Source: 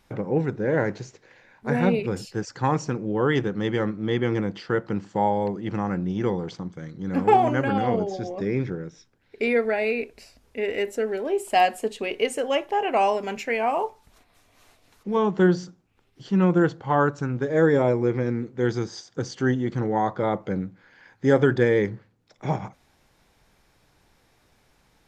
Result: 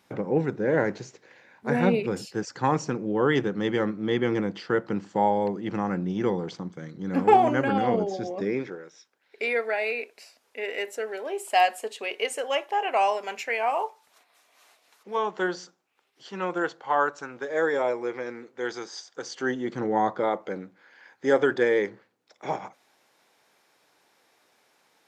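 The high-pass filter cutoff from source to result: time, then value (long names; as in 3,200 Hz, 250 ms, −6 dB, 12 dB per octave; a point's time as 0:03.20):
0:08.38 160 Hz
0:08.82 590 Hz
0:19.19 590 Hz
0:20.04 170 Hz
0:20.32 380 Hz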